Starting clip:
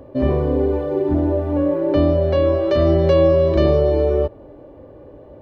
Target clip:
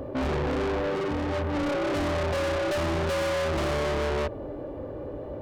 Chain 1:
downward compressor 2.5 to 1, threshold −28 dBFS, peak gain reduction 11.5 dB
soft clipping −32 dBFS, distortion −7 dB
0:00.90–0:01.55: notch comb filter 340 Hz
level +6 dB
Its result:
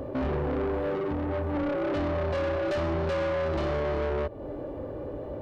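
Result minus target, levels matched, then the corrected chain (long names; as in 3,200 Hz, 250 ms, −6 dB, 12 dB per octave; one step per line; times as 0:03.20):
downward compressor: peak gain reduction +11.5 dB
soft clipping −32 dBFS, distortion −3 dB
0:00.90–0:01.55: notch comb filter 340 Hz
level +6 dB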